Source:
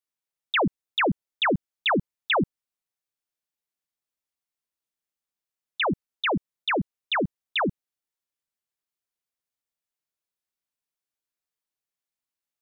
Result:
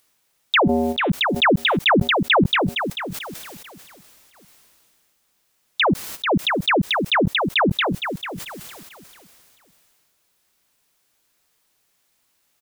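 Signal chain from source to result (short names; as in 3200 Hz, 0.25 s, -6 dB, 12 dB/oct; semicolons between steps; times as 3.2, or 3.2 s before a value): in parallel at +1 dB: upward compressor, threshold -26 dBFS; 0.6–1.1 on the sum: resonator 80 Hz, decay 0.85 s, harmonics odd, mix 50%; 5.85–6.31 transient shaper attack -9 dB, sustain +5 dB; on a send: feedback echo 0.671 s, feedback 50%, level -23.5 dB; on the sum: gate -48 dBFS, range -14 dB; sustainer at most 22 dB/s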